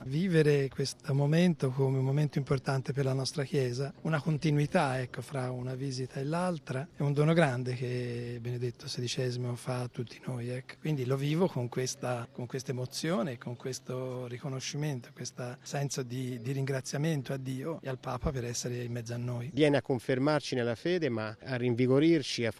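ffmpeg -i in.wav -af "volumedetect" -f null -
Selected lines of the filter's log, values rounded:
mean_volume: -31.5 dB
max_volume: -11.8 dB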